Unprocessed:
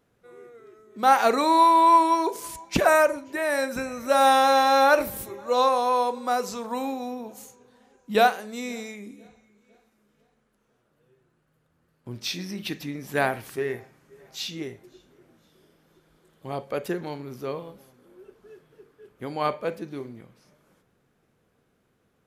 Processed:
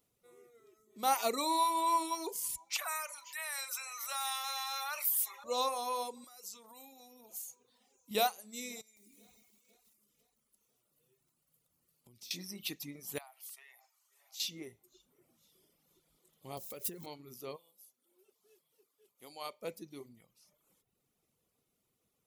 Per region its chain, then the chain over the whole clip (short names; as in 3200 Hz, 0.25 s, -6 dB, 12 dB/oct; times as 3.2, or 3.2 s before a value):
2.7–5.44 HPF 1100 Hz 24 dB/oct + high shelf 2300 Hz -8.5 dB + fast leveller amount 50%
6.24–8.11 tilt +1.5 dB/oct + compressor, threshold -41 dBFS
8.81–12.31 high shelf 3800 Hz +7.5 dB + compressor 8:1, threshold -47 dBFS + lo-fi delay 0.158 s, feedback 55%, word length 10-bit, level -6 dB
13.18–14.4 steep high-pass 690 Hz + compressor 2:1, threshold -48 dBFS
16.57–17.06 switching spikes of -36 dBFS + low shelf 110 Hz +10.5 dB + compressor 16:1, threshold -29 dBFS
17.56–19.62 HPF 930 Hz 6 dB/oct + bell 1700 Hz -5.5 dB 1.5 oct
whole clip: pre-emphasis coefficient 0.8; reverb removal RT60 0.83 s; bell 1600 Hz -12.5 dB 0.3 oct; gain +1.5 dB